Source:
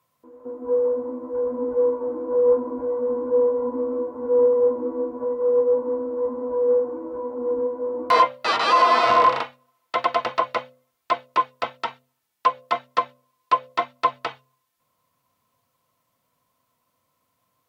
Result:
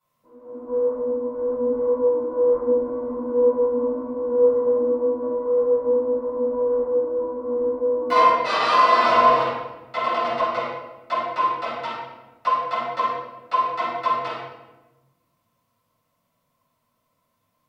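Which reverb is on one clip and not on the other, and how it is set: shoebox room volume 550 m³, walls mixed, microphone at 7.1 m; gain -14 dB

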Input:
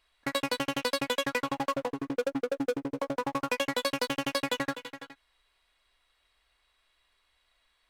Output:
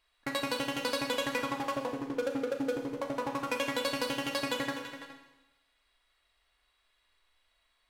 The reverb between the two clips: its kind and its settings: Schroeder reverb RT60 1 s, combs from 26 ms, DRR 3.5 dB; gain -3.5 dB

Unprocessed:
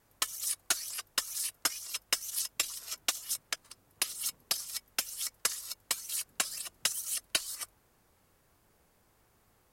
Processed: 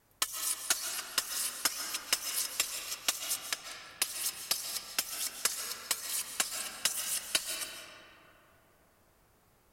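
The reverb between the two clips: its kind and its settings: digital reverb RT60 3.3 s, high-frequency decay 0.45×, pre-delay 0.1 s, DRR 3.5 dB

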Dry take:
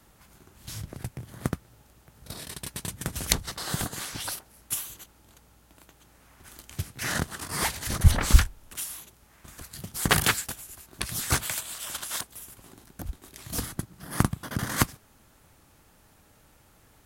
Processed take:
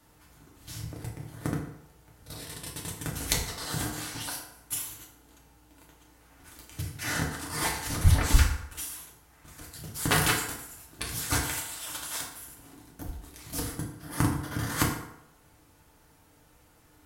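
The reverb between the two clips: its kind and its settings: FDN reverb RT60 0.83 s, low-frequency decay 0.8×, high-frequency decay 0.65×, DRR -2.5 dB; gain -5.5 dB

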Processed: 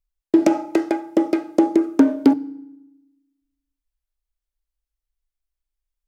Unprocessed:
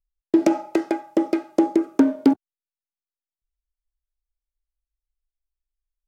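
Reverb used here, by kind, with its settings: FDN reverb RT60 0.91 s, low-frequency decay 1.4×, high-frequency decay 0.75×, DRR 18.5 dB; gain +2 dB

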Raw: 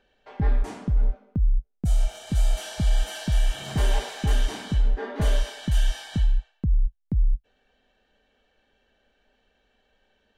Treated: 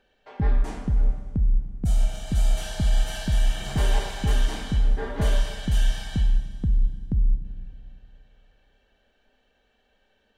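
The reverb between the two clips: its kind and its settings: Schroeder reverb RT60 2.3 s, combs from 32 ms, DRR 10 dB

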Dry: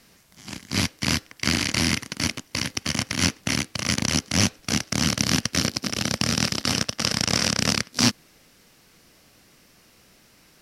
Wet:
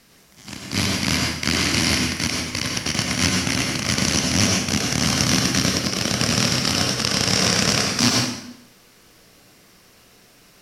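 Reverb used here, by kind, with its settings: plate-style reverb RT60 0.8 s, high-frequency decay 0.85×, pre-delay 80 ms, DRR -1 dB; gain +1 dB

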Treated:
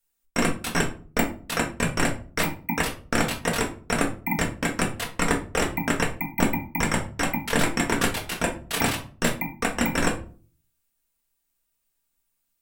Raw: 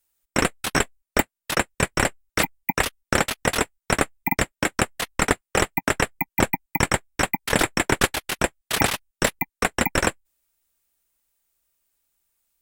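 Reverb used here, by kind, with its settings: shoebox room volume 250 m³, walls furnished, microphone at 1.7 m; gain -5.5 dB

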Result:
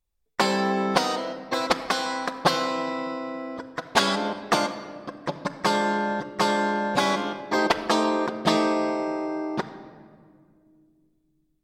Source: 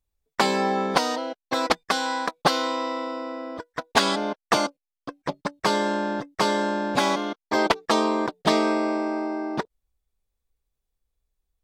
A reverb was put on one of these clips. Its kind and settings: shoebox room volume 3400 m³, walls mixed, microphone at 0.92 m; gain -1 dB

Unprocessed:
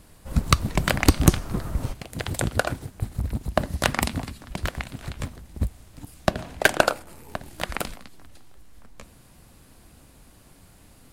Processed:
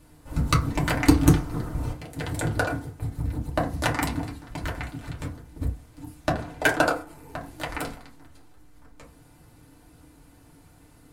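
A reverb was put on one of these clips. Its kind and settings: FDN reverb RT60 0.33 s, low-frequency decay 1.05×, high-frequency decay 0.4×, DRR -4.5 dB; gain -7.5 dB

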